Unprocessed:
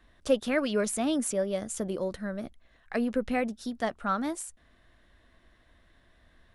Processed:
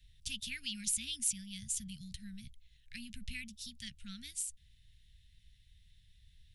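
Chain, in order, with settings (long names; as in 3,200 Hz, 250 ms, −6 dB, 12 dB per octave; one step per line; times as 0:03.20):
inverse Chebyshev band-stop filter 360–1,100 Hz, stop band 60 dB
level +1 dB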